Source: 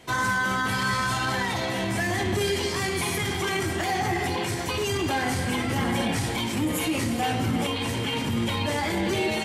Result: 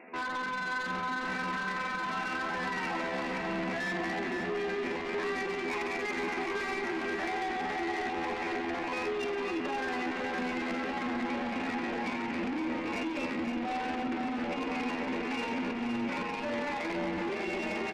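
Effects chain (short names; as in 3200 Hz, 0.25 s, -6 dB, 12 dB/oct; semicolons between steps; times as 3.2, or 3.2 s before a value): FFT band-pass 190–2800 Hz; vocal rider 2 s; limiter -24.5 dBFS, peak gain reduction 9 dB; granular stretch 1.5×, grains 72 ms; soft clip -36 dBFS, distortion -10 dB; tempo 0.79×; feedback echo 0.517 s, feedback 53%, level -6.5 dB; gain +4.5 dB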